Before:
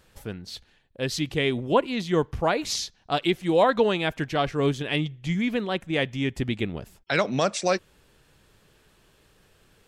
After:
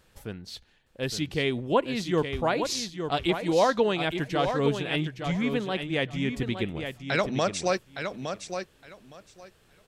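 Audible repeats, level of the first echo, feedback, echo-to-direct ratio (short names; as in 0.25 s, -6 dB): 2, -7.5 dB, 17%, -7.5 dB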